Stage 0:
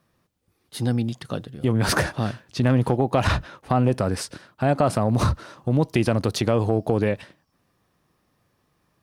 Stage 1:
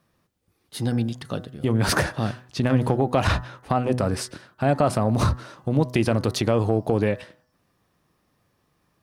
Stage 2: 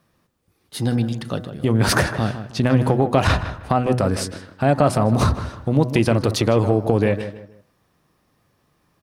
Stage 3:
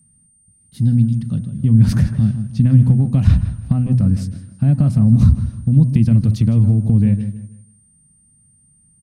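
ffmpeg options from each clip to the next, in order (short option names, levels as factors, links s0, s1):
-af "bandreject=f=124.6:t=h:w=4,bandreject=f=249.2:t=h:w=4,bandreject=f=373.8:t=h:w=4,bandreject=f=498.4:t=h:w=4,bandreject=f=623:t=h:w=4,bandreject=f=747.6:t=h:w=4,bandreject=f=872.2:t=h:w=4,bandreject=f=996.8:t=h:w=4,bandreject=f=1121.4:t=h:w=4,bandreject=f=1246:t=h:w=4,bandreject=f=1370.6:t=h:w=4,bandreject=f=1495.2:t=h:w=4,bandreject=f=1619.8:t=h:w=4,bandreject=f=1744.4:t=h:w=4,bandreject=f=1869:t=h:w=4,bandreject=f=1993.6:t=h:w=4"
-filter_complex "[0:a]asplit=2[s0][s1];[s1]adelay=156,lowpass=f=1800:p=1,volume=0.299,asplit=2[s2][s3];[s3]adelay=156,lowpass=f=1800:p=1,volume=0.32,asplit=2[s4][s5];[s5]adelay=156,lowpass=f=1800:p=1,volume=0.32[s6];[s0][s2][s4][s6]amix=inputs=4:normalize=0,volume=1.5"
-af "aeval=exprs='val(0)+0.00891*sin(2*PI*8800*n/s)':c=same,firequalizer=gain_entry='entry(210,0);entry(360,-25);entry(880,-29);entry(2100,-23);entry(5000,-21)':delay=0.05:min_phase=1,aecho=1:1:165|330|495:0.0794|0.0365|0.0168,volume=2.66"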